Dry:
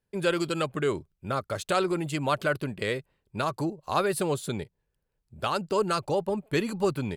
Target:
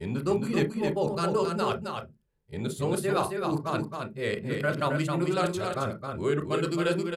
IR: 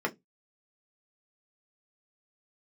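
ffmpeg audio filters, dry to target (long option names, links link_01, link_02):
-filter_complex "[0:a]areverse,lowshelf=frequency=330:gain=3,aecho=1:1:268:0.562,asplit=2[link_01][link_02];[1:a]atrim=start_sample=2205,lowshelf=frequency=150:gain=11,adelay=29[link_03];[link_02][link_03]afir=irnorm=-1:irlink=0,volume=-15.5dB[link_04];[link_01][link_04]amix=inputs=2:normalize=0,aresample=32000,aresample=44100,volume=-3.5dB"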